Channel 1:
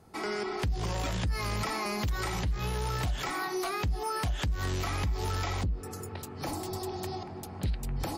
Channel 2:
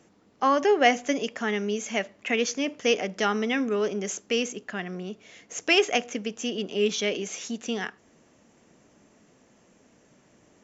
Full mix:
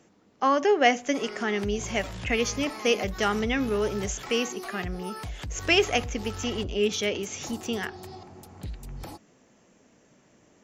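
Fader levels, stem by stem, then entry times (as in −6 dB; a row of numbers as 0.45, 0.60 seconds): −6.0, −0.5 decibels; 1.00, 0.00 seconds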